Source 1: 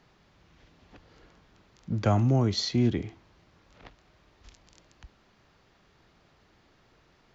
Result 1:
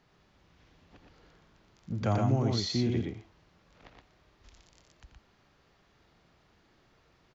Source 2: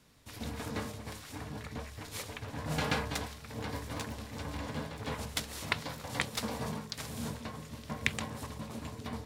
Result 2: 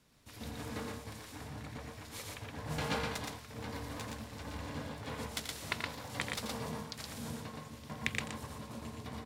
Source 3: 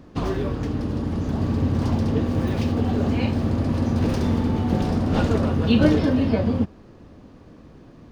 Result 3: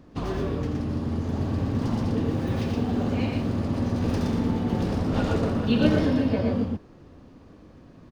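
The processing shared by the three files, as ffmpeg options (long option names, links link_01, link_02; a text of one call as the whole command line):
ffmpeg -i in.wav -af "aecho=1:1:84.55|119.5:0.355|0.708,volume=-5dB" out.wav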